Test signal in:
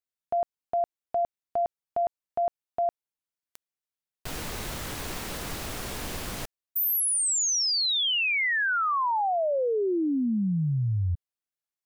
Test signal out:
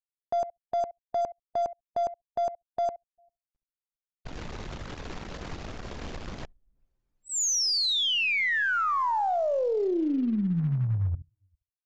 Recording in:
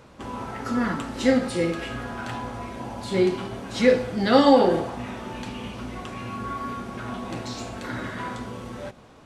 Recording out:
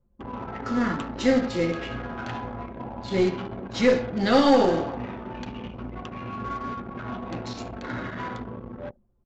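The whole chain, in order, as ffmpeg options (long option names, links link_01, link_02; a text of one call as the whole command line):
ffmpeg -i in.wav -filter_complex "[0:a]asplit=2[link_01][link_02];[link_02]aecho=0:1:70|140:0.224|0.0358[link_03];[link_01][link_03]amix=inputs=2:normalize=0,acrusher=bits=5:mode=log:mix=0:aa=0.000001,aresample=16000,aresample=44100,asplit=2[link_04][link_05];[link_05]aecho=0:1:399:0.0668[link_06];[link_04][link_06]amix=inputs=2:normalize=0,anlmdn=6.31,aeval=exprs='(tanh(2.82*val(0)+0.25)-tanh(0.25))/2.82':channel_layout=same" out.wav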